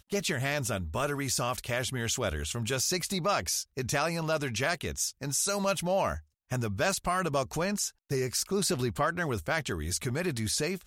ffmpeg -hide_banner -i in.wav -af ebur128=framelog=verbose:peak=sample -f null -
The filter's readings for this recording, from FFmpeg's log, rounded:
Integrated loudness:
  I:         -30.2 LUFS
  Threshold: -40.2 LUFS
Loudness range:
  LRA:         0.8 LU
  Threshold: -50.1 LUFS
  LRA low:   -30.4 LUFS
  LRA high:  -29.6 LUFS
Sample peak:
  Peak:      -15.5 dBFS